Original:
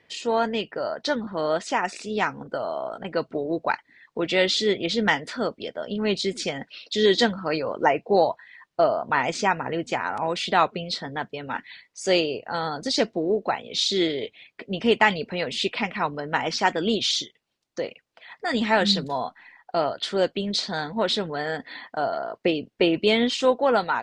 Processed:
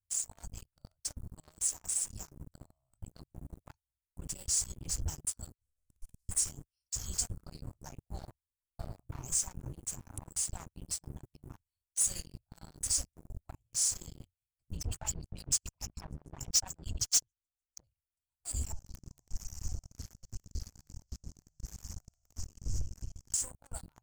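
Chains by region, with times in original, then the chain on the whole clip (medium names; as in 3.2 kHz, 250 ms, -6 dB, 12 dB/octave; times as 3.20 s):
5.54–6.29 s: block-companded coder 3-bit + low-pass 2.8 kHz + feedback comb 250 Hz, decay 0.68 s, mix 90%
14.77–17.84 s: tone controls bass 0 dB, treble +11 dB + LFO low-pass sine 6.8 Hz 600–6800 Hz
18.72–23.34 s: one-bit delta coder 32 kbps, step -32 dBFS + compression 12:1, threshold -35 dBFS + echo whose repeats swap between lows and highs 115 ms, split 1.9 kHz, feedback 74%, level -9 dB
whole clip: inverse Chebyshev band-stop 200–4000 Hz, stop band 50 dB; waveshaping leveller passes 5; trim +3 dB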